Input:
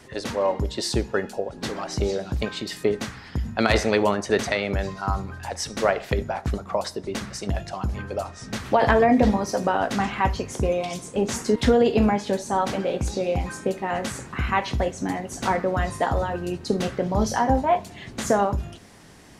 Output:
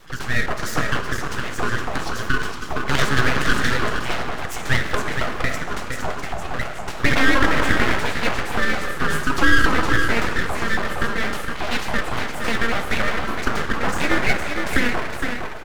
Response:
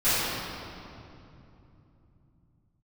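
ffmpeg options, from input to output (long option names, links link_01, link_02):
-filter_complex "[0:a]equalizer=frequency=125:width_type=o:width=1:gain=5,equalizer=frequency=500:width_type=o:width=1:gain=7,equalizer=frequency=8000:width_type=o:width=1:gain=-5,aecho=1:1:574:0.501,asetrate=54684,aresample=44100,afreqshift=230,asplit=2[link_01][link_02];[1:a]atrim=start_sample=2205,asetrate=66150,aresample=44100[link_03];[link_02][link_03]afir=irnorm=-1:irlink=0,volume=-18dB[link_04];[link_01][link_04]amix=inputs=2:normalize=0,aeval=exprs='abs(val(0))':channel_layout=same,volume=-1.5dB"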